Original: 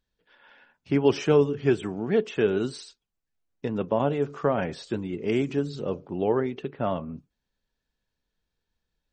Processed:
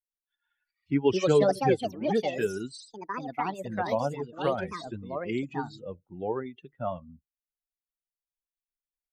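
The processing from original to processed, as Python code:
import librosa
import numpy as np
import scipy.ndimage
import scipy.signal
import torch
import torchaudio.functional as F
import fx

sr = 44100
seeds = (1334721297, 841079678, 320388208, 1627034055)

y = fx.bin_expand(x, sr, power=2.0)
y = fx.echo_pitch(y, sr, ms=447, semitones=5, count=2, db_per_echo=-3.0)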